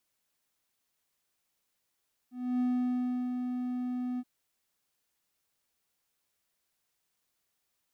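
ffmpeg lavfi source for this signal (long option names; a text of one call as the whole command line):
ffmpeg -f lavfi -i "aevalsrc='0.0668*(1-4*abs(mod(249*t+0.25,1)-0.5))':duration=1.925:sample_rate=44100,afade=type=in:duration=0.287,afade=type=out:start_time=0.287:duration=0.707:silence=0.531,afade=type=out:start_time=1.88:duration=0.045" out.wav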